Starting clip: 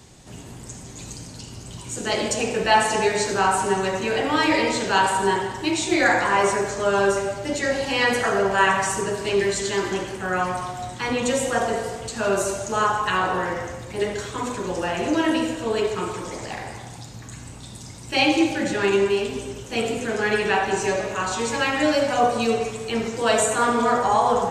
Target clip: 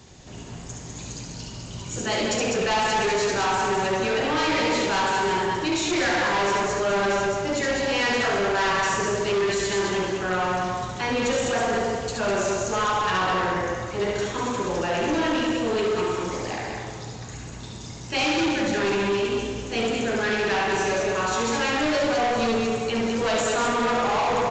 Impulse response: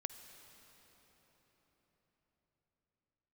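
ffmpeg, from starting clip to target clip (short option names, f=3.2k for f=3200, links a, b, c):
-filter_complex "[0:a]aecho=1:1:69.97|201.2:0.631|0.562,asoftclip=type=hard:threshold=-20dB,aresample=16000,aresample=44100,asplit=2[a][b];[1:a]atrim=start_sample=2205[c];[b][c]afir=irnorm=-1:irlink=0,volume=3.5dB[d];[a][d]amix=inputs=2:normalize=0,volume=-7dB"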